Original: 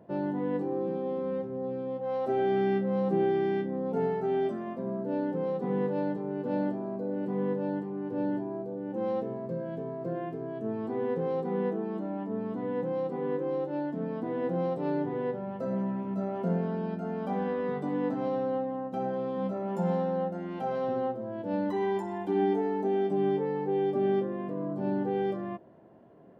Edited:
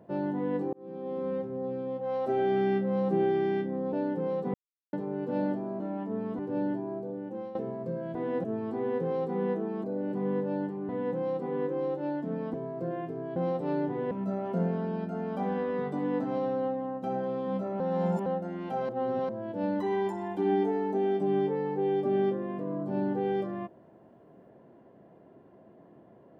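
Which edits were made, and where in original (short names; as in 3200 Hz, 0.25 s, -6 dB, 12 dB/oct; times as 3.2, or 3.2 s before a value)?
0.73–1.25 fade in
3.93–5.1 cut
5.71–6.1 mute
6.97–8.02 swap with 12–12.59
8.75–9.18 fade out, to -14.5 dB
9.78–10.6 swap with 14.24–14.53
15.28–16.01 cut
19.7–20.16 reverse
20.79–21.19 reverse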